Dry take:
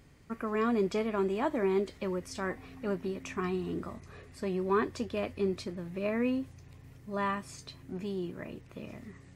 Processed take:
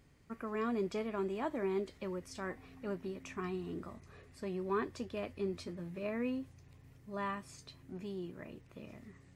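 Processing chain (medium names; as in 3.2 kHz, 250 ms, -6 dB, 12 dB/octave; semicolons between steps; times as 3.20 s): 5.53–6.03 s: doubling 12 ms -5 dB; trim -6.5 dB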